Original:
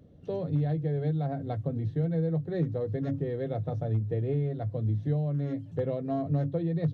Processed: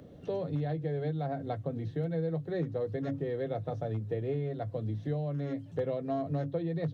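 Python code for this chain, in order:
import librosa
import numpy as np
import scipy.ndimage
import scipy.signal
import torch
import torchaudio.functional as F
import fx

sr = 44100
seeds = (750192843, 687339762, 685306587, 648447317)

y = fx.low_shelf(x, sr, hz=270.0, db=-10.0)
y = fx.band_squash(y, sr, depth_pct=40)
y = y * 10.0 ** (1.5 / 20.0)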